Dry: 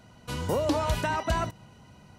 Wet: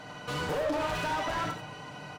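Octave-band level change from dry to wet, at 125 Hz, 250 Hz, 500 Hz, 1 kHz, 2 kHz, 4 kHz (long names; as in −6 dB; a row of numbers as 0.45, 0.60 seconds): −7.5, −4.5, −2.5, −1.5, +1.0, 0.0 decibels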